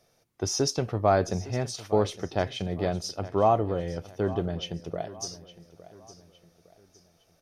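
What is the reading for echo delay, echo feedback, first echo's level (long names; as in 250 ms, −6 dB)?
860 ms, 39%, −17.0 dB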